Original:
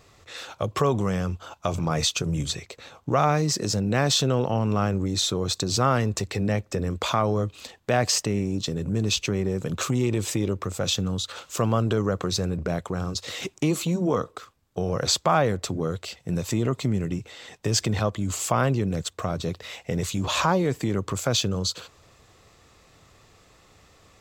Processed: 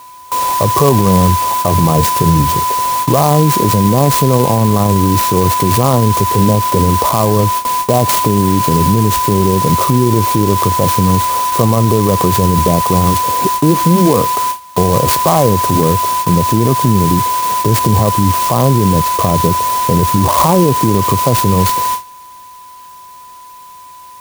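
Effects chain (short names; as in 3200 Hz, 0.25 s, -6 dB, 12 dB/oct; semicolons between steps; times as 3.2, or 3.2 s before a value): elliptic band-stop 1100–4400 Hz; whine 1000 Hz -28 dBFS; high shelf 3000 Hz -11.5 dB; gate with hold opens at -28 dBFS; maximiser +18.5 dB; clock jitter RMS 0.063 ms; gain -1 dB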